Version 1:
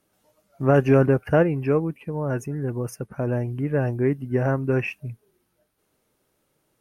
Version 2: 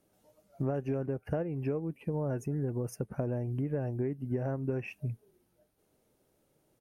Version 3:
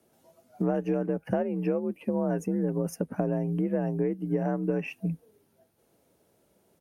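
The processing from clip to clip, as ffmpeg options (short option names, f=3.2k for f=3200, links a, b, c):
-af "firequalizer=gain_entry='entry(700,0);entry(1100,-7);entry(6500,-4)':delay=0.05:min_phase=1,acompressor=threshold=-29dB:ratio=16"
-af "afreqshift=48,volume=5dB"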